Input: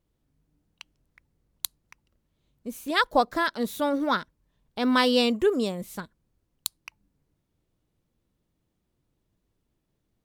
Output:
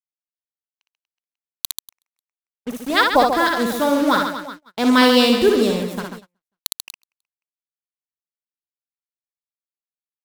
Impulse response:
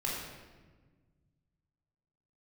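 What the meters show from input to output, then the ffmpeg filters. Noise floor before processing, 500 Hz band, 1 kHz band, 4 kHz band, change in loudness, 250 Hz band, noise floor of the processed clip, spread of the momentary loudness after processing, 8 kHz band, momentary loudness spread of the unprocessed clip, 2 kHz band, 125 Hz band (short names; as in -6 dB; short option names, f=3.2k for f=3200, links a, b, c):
-77 dBFS, +8.0 dB, +8.0 dB, +8.5 dB, +8.5 dB, +8.5 dB, under -85 dBFS, 19 LU, +7.5 dB, 17 LU, +8.0 dB, +8.5 dB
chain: -af "acrusher=bits=5:mix=0:aa=0.5,aecho=1:1:60|138|239.4|371.2|542.6:0.631|0.398|0.251|0.158|0.1,agate=range=-33dB:threshold=-40dB:ratio=16:detection=peak,volume=6dB"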